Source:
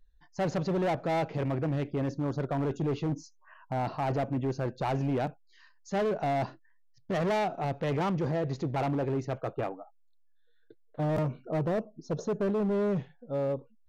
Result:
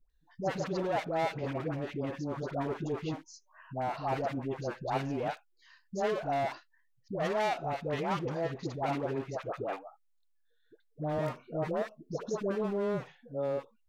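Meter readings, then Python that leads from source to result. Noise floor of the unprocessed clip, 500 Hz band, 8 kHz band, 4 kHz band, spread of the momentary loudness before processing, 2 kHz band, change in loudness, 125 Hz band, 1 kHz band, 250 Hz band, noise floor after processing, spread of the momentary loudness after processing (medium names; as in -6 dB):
-61 dBFS, -2.5 dB, no reading, 0.0 dB, 6 LU, 0.0 dB, -3.5 dB, -7.0 dB, -1.0 dB, -5.5 dB, -70 dBFS, 8 LU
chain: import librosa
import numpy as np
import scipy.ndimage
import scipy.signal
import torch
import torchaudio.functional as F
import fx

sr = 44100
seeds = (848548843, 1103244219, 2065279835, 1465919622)

y = fx.low_shelf(x, sr, hz=300.0, db=-9.0)
y = fx.dispersion(y, sr, late='highs', ms=101.0, hz=690.0)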